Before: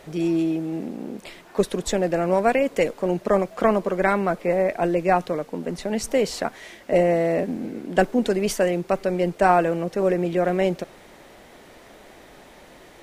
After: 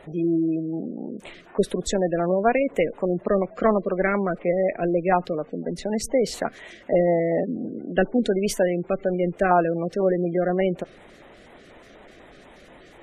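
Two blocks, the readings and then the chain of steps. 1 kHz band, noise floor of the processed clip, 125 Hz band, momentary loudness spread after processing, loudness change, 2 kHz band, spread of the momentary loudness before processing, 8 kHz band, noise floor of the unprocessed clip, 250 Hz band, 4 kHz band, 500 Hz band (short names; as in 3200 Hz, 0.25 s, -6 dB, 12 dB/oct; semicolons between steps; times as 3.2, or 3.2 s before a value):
-2.5 dB, -49 dBFS, 0.0 dB, 10 LU, -1.0 dB, -2.0 dB, 10 LU, -1.0 dB, -48 dBFS, 0.0 dB, -2.5 dB, -1.0 dB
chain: LFO notch square 4.1 Hz 900–5000 Hz; spectral gate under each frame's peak -25 dB strong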